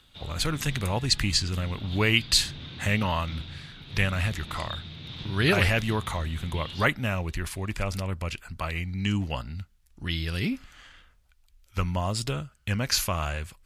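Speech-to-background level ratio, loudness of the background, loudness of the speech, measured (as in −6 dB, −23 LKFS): 12.5 dB, −40.5 LKFS, −28.0 LKFS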